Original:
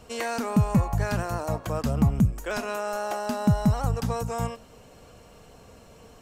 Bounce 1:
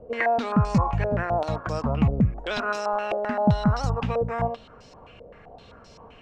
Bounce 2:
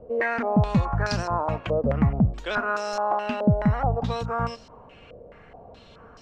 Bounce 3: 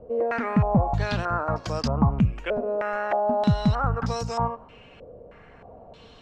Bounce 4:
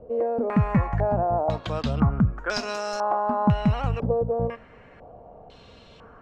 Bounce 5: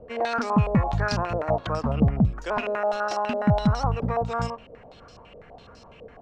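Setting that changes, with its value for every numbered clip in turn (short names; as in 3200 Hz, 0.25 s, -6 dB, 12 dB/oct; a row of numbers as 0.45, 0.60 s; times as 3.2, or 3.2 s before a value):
stepped low-pass, rate: 7.7, 4.7, 3.2, 2, 12 Hz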